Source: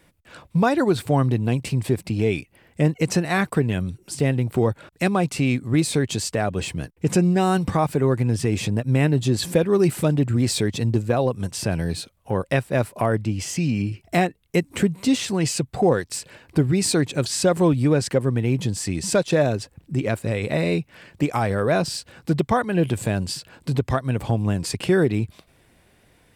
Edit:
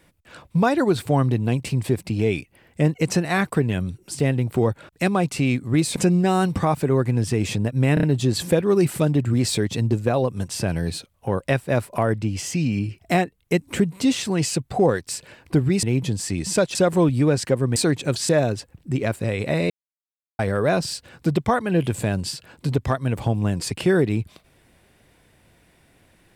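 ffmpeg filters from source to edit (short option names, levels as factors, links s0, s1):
-filter_complex "[0:a]asplit=11[s0][s1][s2][s3][s4][s5][s6][s7][s8][s9][s10];[s0]atrim=end=5.962[s11];[s1]atrim=start=7.078:end=9.092[s12];[s2]atrim=start=9.058:end=9.092[s13];[s3]atrim=start=9.058:end=9.092[s14];[s4]atrim=start=9.058:end=16.862[s15];[s5]atrim=start=18.398:end=19.322[s16];[s6]atrim=start=17.388:end=18.402[s17];[s7]atrim=start=16.858:end=17.392[s18];[s8]atrim=start=19.318:end=20.73,asetpts=PTS-STARTPTS,afade=t=out:st=1.408:d=0.004:c=hsin[s19];[s9]atrim=start=20.73:end=21.42,asetpts=PTS-STARTPTS,volume=0[s20];[s10]atrim=start=21.42,asetpts=PTS-STARTPTS,afade=t=in:d=0.004:c=hsin[s21];[s11][s12]acrossfade=d=0.004:c1=hsin:c2=hsin[s22];[s22][s13]acrossfade=d=0.004:c1=hsin:c2=hsin[s23];[s23][s14]acrossfade=d=0.004:c1=hsin:c2=hsin[s24];[s24][s15]acrossfade=d=0.004:c1=hsin:c2=hsin[s25];[s25][s16]acrossfade=d=0.004:c1=hsin:c2=hsin[s26];[s26][s17]acrossfade=d=0.004:c1=hsin:c2=hsin[s27];[s27][s18]acrossfade=d=0.004:c1=hsin:c2=hsin[s28];[s19][s20][s21]concat=n=3:v=0:a=1[s29];[s28][s29]acrossfade=d=0.004:c1=hsin:c2=hsin"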